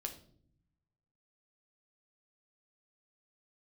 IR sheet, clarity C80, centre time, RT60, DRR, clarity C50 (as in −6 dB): 15.0 dB, 13 ms, non-exponential decay, 3.5 dB, 11.0 dB